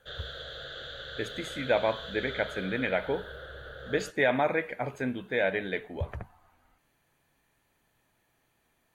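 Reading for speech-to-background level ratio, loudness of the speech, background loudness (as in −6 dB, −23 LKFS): 10.5 dB, −30.5 LKFS, −41.0 LKFS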